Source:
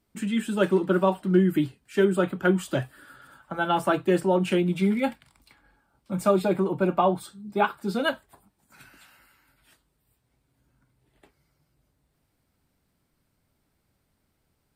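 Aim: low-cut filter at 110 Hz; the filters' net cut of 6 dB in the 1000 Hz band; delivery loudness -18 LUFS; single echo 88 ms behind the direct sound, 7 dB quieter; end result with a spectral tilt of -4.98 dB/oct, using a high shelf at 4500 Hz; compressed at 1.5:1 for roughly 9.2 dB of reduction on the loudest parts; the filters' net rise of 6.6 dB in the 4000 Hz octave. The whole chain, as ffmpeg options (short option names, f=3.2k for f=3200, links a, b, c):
-af "highpass=110,equalizer=f=1k:t=o:g=-9,equalizer=f=4k:t=o:g=7,highshelf=f=4.5k:g=6.5,acompressor=threshold=-43dB:ratio=1.5,aecho=1:1:88:0.447,volume=15.5dB"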